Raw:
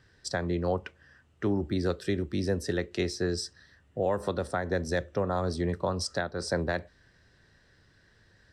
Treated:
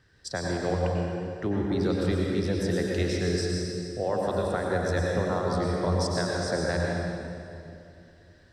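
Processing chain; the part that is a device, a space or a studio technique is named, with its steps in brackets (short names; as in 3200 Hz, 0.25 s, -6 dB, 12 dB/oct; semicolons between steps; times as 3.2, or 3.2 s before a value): stairwell (reverb RT60 2.6 s, pre-delay 89 ms, DRR -2 dB); gain -1.5 dB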